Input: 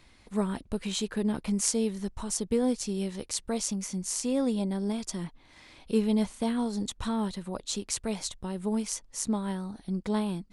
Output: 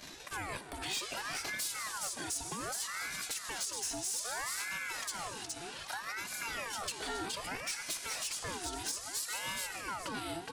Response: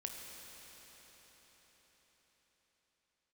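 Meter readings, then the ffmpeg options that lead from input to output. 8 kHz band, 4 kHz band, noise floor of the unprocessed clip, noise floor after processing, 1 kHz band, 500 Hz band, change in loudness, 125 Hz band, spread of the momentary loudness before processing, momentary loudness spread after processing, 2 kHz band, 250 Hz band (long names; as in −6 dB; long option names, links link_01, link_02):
−2.5 dB, 0.0 dB, −58 dBFS, −47 dBFS, −0.5 dB, −14.0 dB, −6.5 dB, −15.5 dB, 7 LU, 5 LU, +8.5 dB, −21.0 dB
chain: -filter_complex "[0:a]aecho=1:1:2.3:0.71,agate=range=-33dB:threshold=-46dB:ratio=3:detection=peak,acompressor=threshold=-33dB:ratio=5,highpass=180,equalizer=frequency=440:width_type=o:width=1.6:gain=-14,aecho=1:1:418|836|1254:0.398|0.0836|0.0176,acompressor=mode=upward:threshold=-40dB:ratio=2.5,asplit=2[link_01][link_02];[1:a]atrim=start_sample=2205,afade=type=out:start_time=0.4:duration=0.01,atrim=end_sample=18081[link_03];[link_02][link_03]afir=irnorm=-1:irlink=0,volume=3dB[link_04];[link_01][link_04]amix=inputs=2:normalize=0,anlmdn=0.000631,alimiter=limit=-21dB:level=0:latency=1:release=130,asoftclip=type=tanh:threshold=-31dB,aeval=exprs='val(0)*sin(2*PI*1200*n/s+1200*0.6/0.63*sin(2*PI*0.63*n/s))':channel_layout=same,volume=3dB"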